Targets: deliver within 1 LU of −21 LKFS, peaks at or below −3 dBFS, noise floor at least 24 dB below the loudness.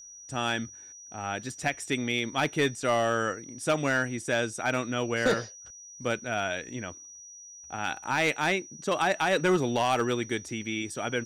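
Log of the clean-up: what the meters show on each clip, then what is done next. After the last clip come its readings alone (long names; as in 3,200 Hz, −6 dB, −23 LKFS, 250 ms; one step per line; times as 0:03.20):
share of clipped samples 0.4%; peaks flattened at −17.5 dBFS; interfering tone 5,800 Hz; level of the tone −45 dBFS; integrated loudness −28.5 LKFS; sample peak −17.5 dBFS; target loudness −21.0 LKFS
→ clipped peaks rebuilt −17.5 dBFS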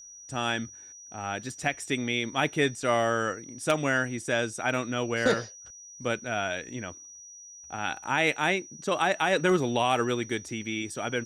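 share of clipped samples 0.0%; interfering tone 5,800 Hz; level of the tone −45 dBFS
→ notch filter 5,800 Hz, Q 30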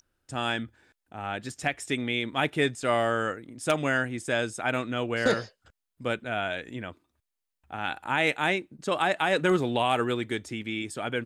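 interfering tone none found; integrated loudness −28.5 LKFS; sample peak −9.5 dBFS; target loudness −21.0 LKFS
→ level +7.5 dB
brickwall limiter −3 dBFS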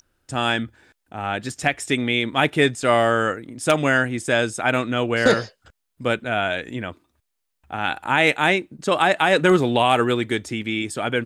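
integrated loudness −21.0 LKFS; sample peak −3.0 dBFS; background noise floor −76 dBFS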